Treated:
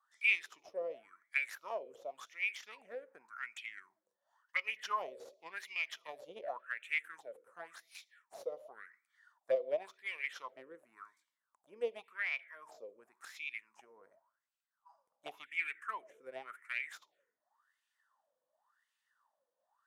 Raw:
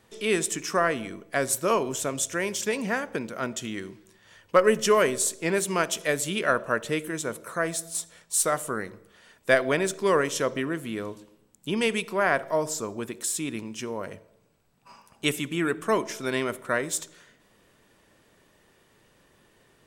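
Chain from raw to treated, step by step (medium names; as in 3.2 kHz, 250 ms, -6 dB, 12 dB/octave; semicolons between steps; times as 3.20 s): tilt EQ +4.5 dB/octave; touch-sensitive phaser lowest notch 390 Hz, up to 1.6 kHz, full sweep at -18 dBFS; Chebyshev shaper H 5 -8 dB, 7 -10 dB, 8 -24 dB, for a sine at -3.5 dBFS; wah-wah 0.91 Hz 490–2400 Hz, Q 12; trim +2 dB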